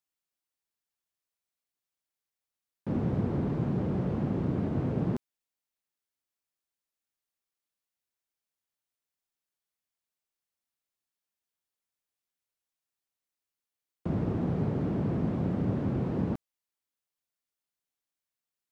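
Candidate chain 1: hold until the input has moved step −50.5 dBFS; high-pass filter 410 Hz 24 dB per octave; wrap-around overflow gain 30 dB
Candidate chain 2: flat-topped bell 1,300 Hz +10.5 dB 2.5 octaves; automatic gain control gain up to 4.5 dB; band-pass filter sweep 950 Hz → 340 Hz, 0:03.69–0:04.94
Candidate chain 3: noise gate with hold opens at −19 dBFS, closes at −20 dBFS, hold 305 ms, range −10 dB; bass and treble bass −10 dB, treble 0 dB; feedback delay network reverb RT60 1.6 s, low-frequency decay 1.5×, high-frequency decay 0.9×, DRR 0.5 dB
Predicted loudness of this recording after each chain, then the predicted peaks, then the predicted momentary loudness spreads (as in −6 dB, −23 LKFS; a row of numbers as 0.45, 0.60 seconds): −41.0, −33.5, −34.0 LKFS; −30.0, −20.5, −18.5 dBFS; 5, 5, 15 LU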